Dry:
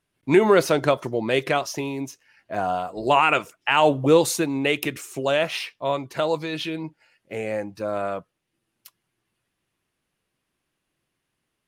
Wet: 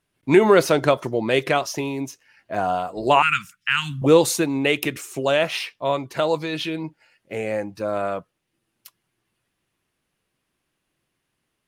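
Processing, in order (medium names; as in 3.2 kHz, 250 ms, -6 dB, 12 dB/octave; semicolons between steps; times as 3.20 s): 3.22–4.02 s: Chebyshev band-stop 200–1400 Hz, order 3; trim +2 dB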